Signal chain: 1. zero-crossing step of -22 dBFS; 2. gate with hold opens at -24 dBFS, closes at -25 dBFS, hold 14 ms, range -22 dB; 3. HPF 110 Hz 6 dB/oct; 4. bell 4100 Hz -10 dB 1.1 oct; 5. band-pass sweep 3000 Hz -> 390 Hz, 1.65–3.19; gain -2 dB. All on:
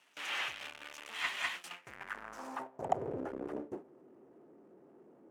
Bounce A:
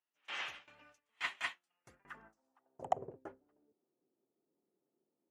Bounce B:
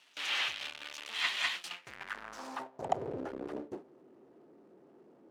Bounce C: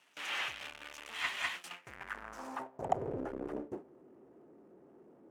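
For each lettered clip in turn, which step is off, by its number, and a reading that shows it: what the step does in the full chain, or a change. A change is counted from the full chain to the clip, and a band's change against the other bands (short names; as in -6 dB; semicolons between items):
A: 1, distortion -3 dB; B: 4, 4 kHz band +6.5 dB; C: 3, 125 Hz band +2.5 dB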